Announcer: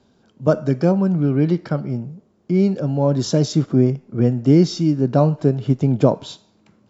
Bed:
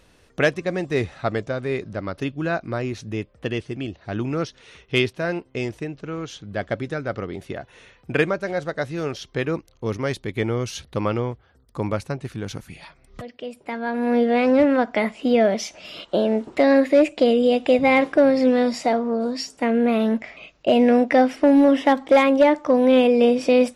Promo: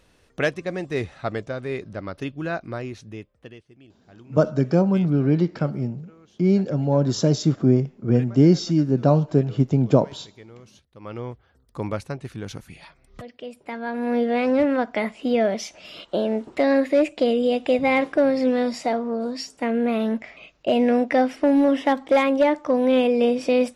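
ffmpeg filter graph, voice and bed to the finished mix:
ffmpeg -i stem1.wav -i stem2.wav -filter_complex "[0:a]adelay=3900,volume=-2dB[link_01];[1:a]volume=15dB,afade=type=out:start_time=2.64:duration=0.98:silence=0.125893,afade=type=in:start_time=10.99:duration=0.42:silence=0.11885[link_02];[link_01][link_02]amix=inputs=2:normalize=0" out.wav

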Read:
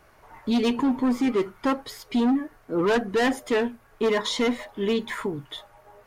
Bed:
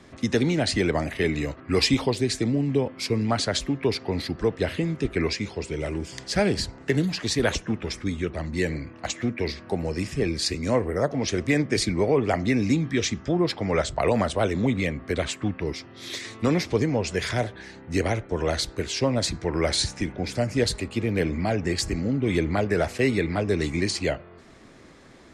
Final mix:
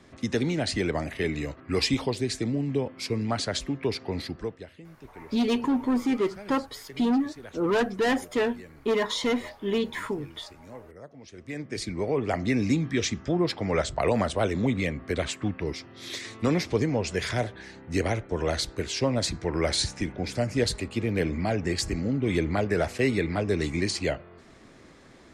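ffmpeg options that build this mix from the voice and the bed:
ffmpeg -i stem1.wav -i stem2.wav -filter_complex "[0:a]adelay=4850,volume=-2dB[link_01];[1:a]volume=15.5dB,afade=type=out:start_time=4.23:duration=0.44:silence=0.133352,afade=type=in:start_time=11.33:duration=1.26:silence=0.105925[link_02];[link_01][link_02]amix=inputs=2:normalize=0" out.wav

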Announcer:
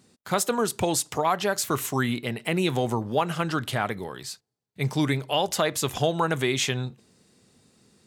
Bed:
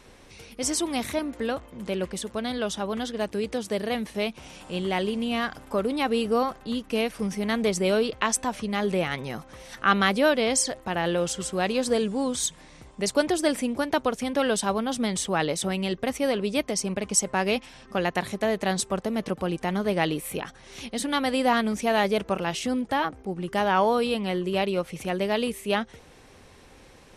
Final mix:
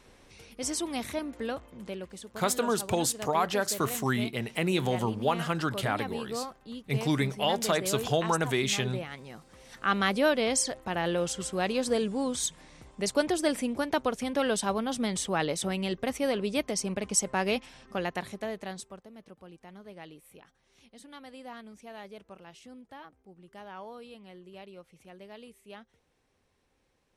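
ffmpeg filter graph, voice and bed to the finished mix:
ffmpeg -i stem1.wav -i stem2.wav -filter_complex "[0:a]adelay=2100,volume=-3dB[link_01];[1:a]volume=3dB,afade=type=out:start_time=1.74:duration=0.3:silence=0.473151,afade=type=in:start_time=9.41:duration=0.8:silence=0.375837,afade=type=out:start_time=17.6:duration=1.44:silence=0.11885[link_02];[link_01][link_02]amix=inputs=2:normalize=0" out.wav

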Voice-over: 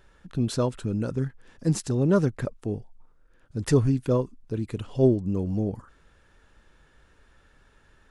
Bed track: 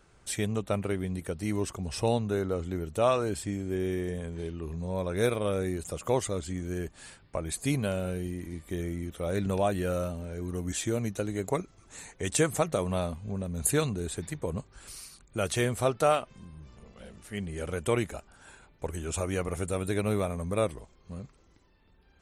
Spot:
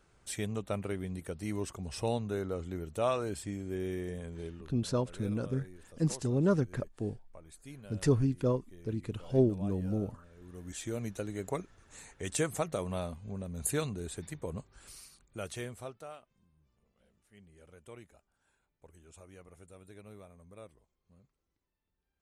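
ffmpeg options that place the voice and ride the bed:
ffmpeg -i stem1.wav -i stem2.wav -filter_complex "[0:a]adelay=4350,volume=-6dB[link_01];[1:a]volume=9dB,afade=type=out:start_time=4.47:duration=0.25:silence=0.177828,afade=type=in:start_time=10.36:duration=0.68:silence=0.188365,afade=type=out:start_time=14.88:duration=1.18:silence=0.141254[link_02];[link_01][link_02]amix=inputs=2:normalize=0" out.wav

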